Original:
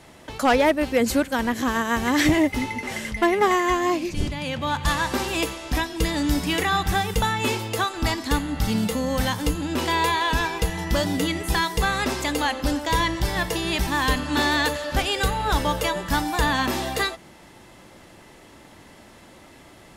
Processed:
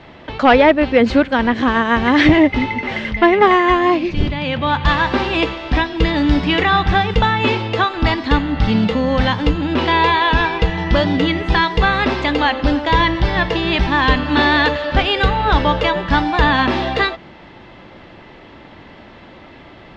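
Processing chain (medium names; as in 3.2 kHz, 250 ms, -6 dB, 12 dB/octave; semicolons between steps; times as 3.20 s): low-pass 3.8 kHz 24 dB/octave; trim +8 dB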